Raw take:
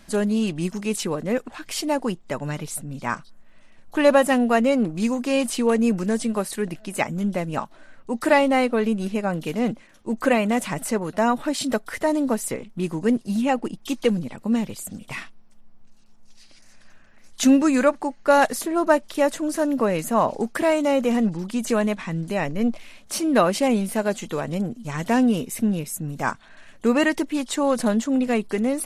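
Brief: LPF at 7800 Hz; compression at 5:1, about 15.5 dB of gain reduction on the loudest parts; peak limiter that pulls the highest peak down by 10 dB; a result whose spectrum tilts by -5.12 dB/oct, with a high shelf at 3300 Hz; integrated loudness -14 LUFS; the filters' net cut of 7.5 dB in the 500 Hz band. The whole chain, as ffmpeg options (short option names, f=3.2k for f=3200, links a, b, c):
-af "lowpass=7.8k,equalizer=f=500:t=o:g=-9,highshelf=f=3.3k:g=-5,acompressor=threshold=-32dB:ratio=5,volume=25dB,alimiter=limit=-5.5dB:level=0:latency=1"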